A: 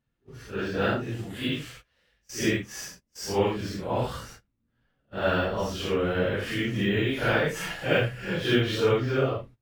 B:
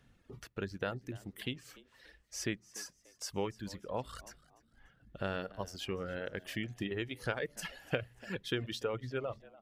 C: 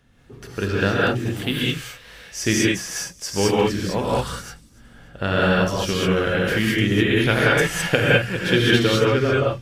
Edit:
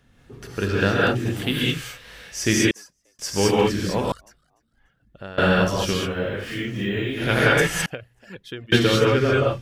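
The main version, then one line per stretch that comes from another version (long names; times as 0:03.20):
C
0:02.71–0:03.19: punch in from B
0:04.12–0:05.38: punch in from B
0:06.07–0:07.24: punch in from A, crossfade 0.24 s
0:07.86–0:08.72: punch in from B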